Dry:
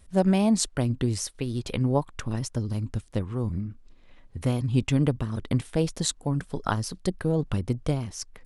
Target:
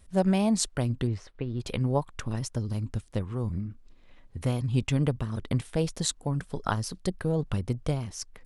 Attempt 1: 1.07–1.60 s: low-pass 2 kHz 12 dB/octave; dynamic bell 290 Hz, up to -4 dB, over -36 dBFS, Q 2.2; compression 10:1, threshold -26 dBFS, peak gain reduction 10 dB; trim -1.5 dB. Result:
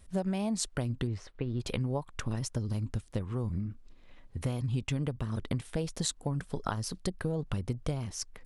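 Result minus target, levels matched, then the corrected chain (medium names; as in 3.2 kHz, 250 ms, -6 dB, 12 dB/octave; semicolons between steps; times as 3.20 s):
compression: peak gain reduction +10 dB
1.07–1.60 s: low-pass 2 kHz 12 dB/octave; dynamic bell 290 Hz, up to -4 dB, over -36 dBFS, Q 2.2; trim -1.5 dB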